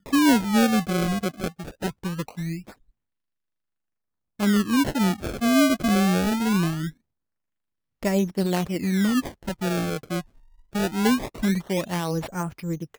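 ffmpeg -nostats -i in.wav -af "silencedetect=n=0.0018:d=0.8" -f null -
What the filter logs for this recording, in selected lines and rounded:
silence_start: 2.90
silence_end: 4.39 | silence_duration: 1.49
silence_start: 6.97
silence_end: 8.02 | silence_duration: 1.05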